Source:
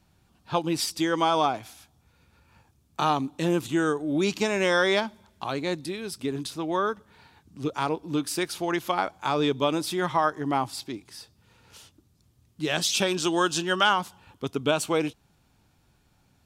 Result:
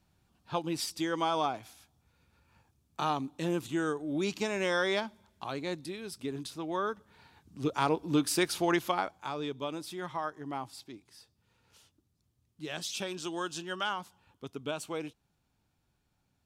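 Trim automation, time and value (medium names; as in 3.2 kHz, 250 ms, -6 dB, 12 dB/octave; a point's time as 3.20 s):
6.74 s -7 dB
8.04 s 0 dB
8.71 s 0 dB
9.36 s -12 dB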